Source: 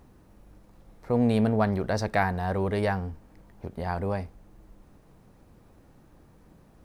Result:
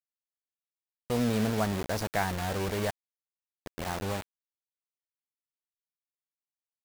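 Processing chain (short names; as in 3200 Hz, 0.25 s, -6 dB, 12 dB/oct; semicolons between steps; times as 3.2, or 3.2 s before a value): 2.9–3.66 compressor 2.5:1, threshold -48 dBFS, peak gain reduction 15 dB; bit-crush 5-bit; gain -5 dB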